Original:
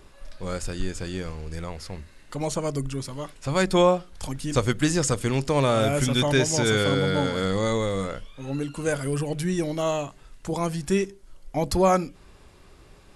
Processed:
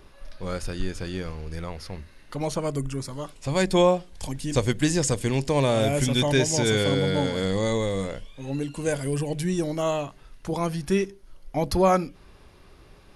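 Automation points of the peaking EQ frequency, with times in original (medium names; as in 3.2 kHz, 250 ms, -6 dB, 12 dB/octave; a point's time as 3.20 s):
peaking EQ -11 dB 0.29 oct
2.56 s 7.6 kHz
3.50 s 1.3 kHz
9.45 s 1.3 kHz
10.02 s 7.6 kHz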